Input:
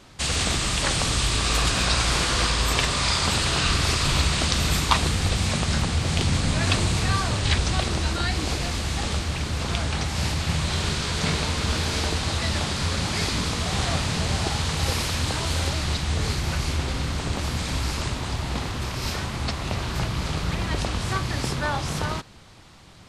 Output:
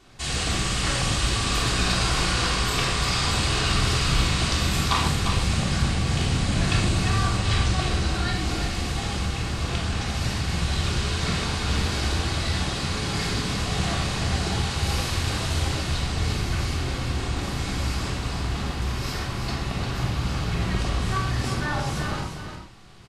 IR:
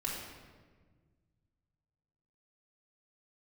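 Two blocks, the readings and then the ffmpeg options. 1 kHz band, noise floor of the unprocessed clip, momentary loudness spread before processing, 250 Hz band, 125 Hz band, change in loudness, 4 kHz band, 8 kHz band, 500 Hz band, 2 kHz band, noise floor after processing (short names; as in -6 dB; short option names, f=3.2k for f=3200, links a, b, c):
-0.5 dB, -31 dBFS, 6 LU, +0.5 dB, +0.5 dB, -0.5 dB, -1.5 dB, -2.5 dB, -1.0 dB, -1.0 dB, -31 dBFS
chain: -filter_complex "[0:a]aecho=1:1:350:0.422[a];[1:a]atrim=start_sample=2205,afade=t=out:st=0.2:d=0.01,atrim=end_sample=9261[b];[a][b]afir=irnorm=-1:irlink=0,volume=-4dB"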